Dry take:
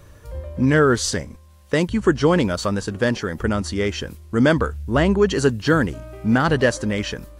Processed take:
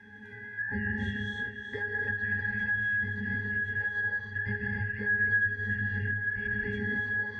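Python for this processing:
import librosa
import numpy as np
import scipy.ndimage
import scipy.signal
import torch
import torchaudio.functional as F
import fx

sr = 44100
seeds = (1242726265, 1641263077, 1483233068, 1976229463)

y = fx.band_shuffle(x, sr, order='2143')
y = fx.low_shelf(y, sr, hz=61.0, db=6.0)
y = fx.octave_resonator(y, sr, note='G#', decay_s=0.36)
y = fx.echo_split(y, sr, split_hz=330.0, low_ms=129, high_ms=368, feedback_pct=52, wet_db=-12.0)
y = fx.rev_gated(y, sr, seeds[0], gate_ms=330, shape='rising', drr_db=-3.0)
y = fx.band_squash(y, sr, depth_pct=70)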